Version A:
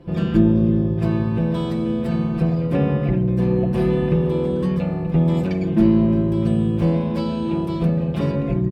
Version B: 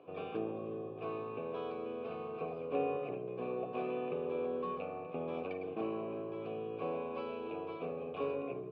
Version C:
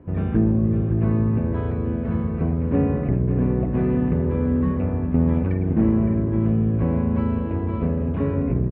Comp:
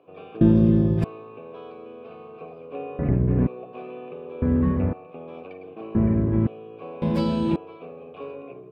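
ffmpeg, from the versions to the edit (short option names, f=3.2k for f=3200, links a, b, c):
-filter_complex "[0:a]asplit=2[a][b];[2:a]asplit=3[c][d][e];[1:a]asplit=6[f][g][h][i][j][k];[f]atrim=end=0.412[l];[a]atrim=start=0.408:end=1.042[m];[g]atrim=start=1.038:end=2.992[n];[c]atrim=start=2.988:end=3.472[o];[h]atrim=start=3.468:end=4.422[p];[d]atrim=start=4.418:end=4.932[q];[i]atrim=start=4.928:end=5.952[r];[e]atrim=start=5.948:end=6.472[s];[j]atrim=start=6.468:end=7.022[t];[b]atrim=start=7.018:end=7.562[u];[k]atrim=start=7.558[v];[l][m]acrossfade=d=0.004:c1=hsin:c2=hsin[w];[w][n]acrossfade=d=0.004:c1=hsin:c2=hsin[x];[x][o]acrossfade=d=0.004:c1=hsin:c2=hsin[y];[y][p]acrossfade=d=0.004:c1=hsin:c2=hsin[z];[z][q]acrossfade=d=0.004:c1=hsin:c2=hsin[aa];[aa][r]acrossfade=d=0.004:c1=hsin:c2=hsin[ab];[ab][s]acrossfade=d=0.004:c1=hsin:c2=hsin[ac];[ac][t]acrossfade=d=0.004:c1=hsin:c2=hsin[ad];[ad][u]acrossfade=d=0.004:c1=hsin:c2=hsin[ae];[ae][v]acrossfade=d=0.004:c1=hsin:c2=hsin"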